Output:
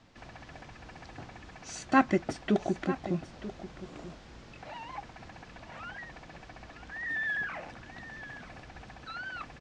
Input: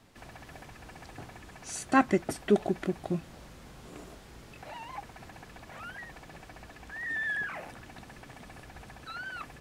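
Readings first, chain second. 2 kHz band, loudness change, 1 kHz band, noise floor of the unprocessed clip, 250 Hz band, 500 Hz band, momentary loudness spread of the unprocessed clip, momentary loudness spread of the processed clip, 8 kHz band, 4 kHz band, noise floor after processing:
0.0 dB, −1.5 dB, 0.0 dB, −51 dBFS, 0.0 dB, −3.0 dB, 22 LU, 19 LU, −5.0 dB, 0.0 dB, −51 dBFS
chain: low-pass filter 6,400 Hz 24 dB per octave
notch filter 410 Hz, Q 12
single-tap delay 937 ms −14 dB

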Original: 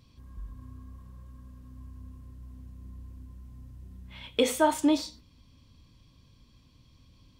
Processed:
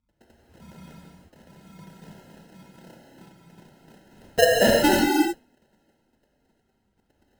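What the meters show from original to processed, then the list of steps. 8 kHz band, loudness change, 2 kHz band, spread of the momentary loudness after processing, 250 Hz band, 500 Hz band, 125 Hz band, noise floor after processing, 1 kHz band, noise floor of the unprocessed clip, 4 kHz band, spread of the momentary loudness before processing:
+6.5 dB, +6.5 dB, +13.0 dB, 12 LU, +5.0 dB, +8.5 dB, +4.5 dB, −71 dBFS, +5.5 dB, −60 dBFS, +8.0 dB, 21 LU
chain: three sine waves on the formant tracks
Bessel low-pass filter 2,200 Hz, order 2
decimation without filtering 38×
reverb whose tail is shaped and stops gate 390 ms flat, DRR −3 dB
level +2.5 dB

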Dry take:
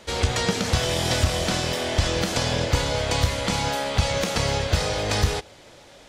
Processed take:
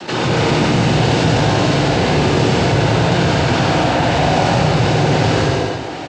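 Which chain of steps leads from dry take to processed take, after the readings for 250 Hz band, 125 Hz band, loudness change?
+14.0 dB, +10.5 dB, +9.0 dB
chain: low-shelf EQ 300 Hz +6.5 dB
notch filter 3,400 Hz, Q 14
cochlear-implant simulation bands 8
hard clipping −16.5 dBFS, distortion −14 dB
high-frequency loss of the air 130 metres
on a send: multi-tap delay 93/263 ms −3.5/−17 dB
on the sum: reverb whose tail is shaped and stops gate 300 ms flat, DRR −6 dB
envelope flattener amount 50%

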